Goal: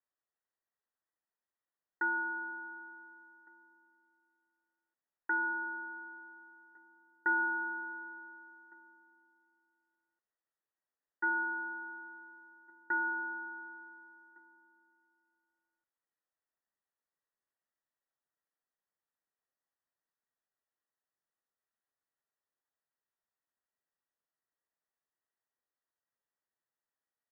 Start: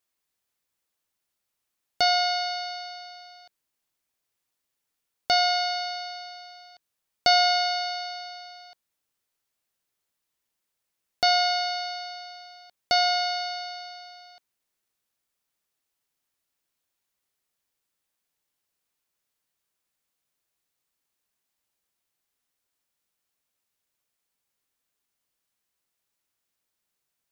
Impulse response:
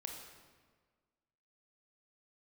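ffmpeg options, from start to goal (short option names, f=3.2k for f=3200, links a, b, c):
-filter_complex "[0:a]equalizer=f=130:t=o:w=0.8:g=6.5,lowpass=f=2.2k:t=q:w=0.5098,lowpass=f=2.2k:t=q:w=0.6013,lowpass=f=2.2k:t=q:w=0.9,lowpass=f=2.2k:t=q:w=2.563,afreqshift=-2600,asplit=2[a][b];[1:a]atrim=start_sample=2205,adelay=65[c];[b][c]afir=irnorm=-1:irlink=0,volume=-18dB[d];[a][d]amix=inputs=2:normalize=0,asetrate=34006,aresample=44100,atempo=1.29684,asplit=2[e][f];[f]adelay=1458,volume=-25dB,highshelf=f=4k:g=-32.8[g];[e][g]amix=inputs=2:normalize=0,volume=-8.5dB"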